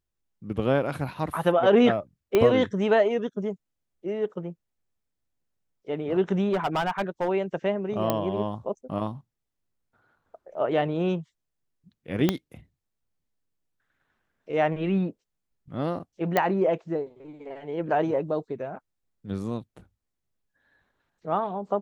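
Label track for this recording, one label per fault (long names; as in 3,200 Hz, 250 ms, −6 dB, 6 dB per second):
2.350000	2.350000	click −9 dBFS
6.520000	7.290000	clipping −21 dBFS
8.100000	8.100000	click −10 dBFS
12.290000	12.290000	click −8 dBFS
16.370000	16.370000	click −9 dBFS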